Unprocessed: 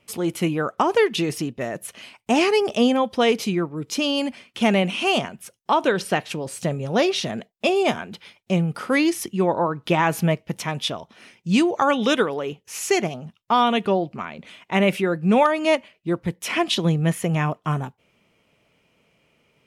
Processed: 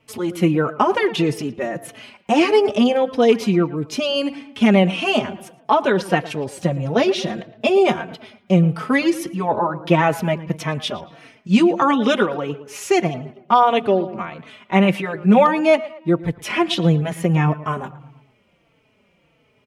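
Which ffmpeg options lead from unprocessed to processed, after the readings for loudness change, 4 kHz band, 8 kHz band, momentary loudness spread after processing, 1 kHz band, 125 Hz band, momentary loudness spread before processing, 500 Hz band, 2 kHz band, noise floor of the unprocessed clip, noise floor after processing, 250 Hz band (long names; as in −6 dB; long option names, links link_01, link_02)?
+3.5 dB, 0.0 dB, −3.5 dB, 12 LU, +3.5 dB, +4.0 dB, 11 LU, +3.5 dB, +1.5 dB, −67 dBFS, −61 dBFS, +4.0 dB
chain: -filter_complex "[0:a]equalizer=frequency=12000:width_type=o:width=2.4:gain=-8,asplit=2[link_01][link_02];[link_02]adelay=113,lowpass=frequency=2800:poles=1,volume=-16dB,asplit=2[link_03][link_04];[link_04]adelay=113,lowpass=frequency=2800:poles=1,volume=0.49,asplit=2[link_05][link_06];[link_06]adelay=113,lowpass=frequency=2800:poles=1,volume=0.49,asplit=2[link_07][link_08];[link_08]adelay=113,lowpass=frequency=2800:poles=1,volume=0.49[link_09];[link_03][link_05][link_07][link_09]amix=inputs=4:normalize=0[link_10];[link_01][link_10]amix=inputs=2:normalize=0,asplit=2[link_11][link_12];[link_12]adelay=4,afreqshift=-1.6[link_13];[link_11][link_13]amix=inputs=2:normalize=1,volume=6.5dB"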